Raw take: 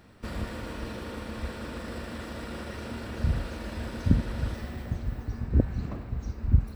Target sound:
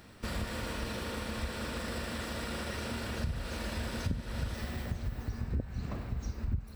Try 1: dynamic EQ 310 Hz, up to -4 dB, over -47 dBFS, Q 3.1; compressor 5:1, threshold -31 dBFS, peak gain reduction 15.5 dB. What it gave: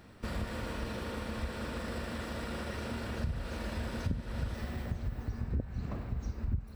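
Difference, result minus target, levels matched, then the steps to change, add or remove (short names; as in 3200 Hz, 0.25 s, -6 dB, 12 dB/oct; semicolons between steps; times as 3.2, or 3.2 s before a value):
4000 Hz band -4.0 dB
add after compressor: high shelf 2400 Hz +7 dB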